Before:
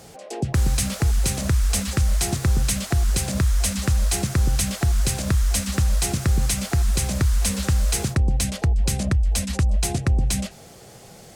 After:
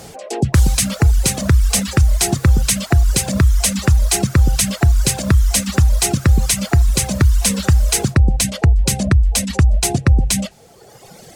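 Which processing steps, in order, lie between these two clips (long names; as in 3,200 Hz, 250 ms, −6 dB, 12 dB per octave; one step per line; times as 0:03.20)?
reverb reduction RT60 1.6 s
level +8.5 dB
Ogg Vorbis 192 kbit/s 48,000 Hz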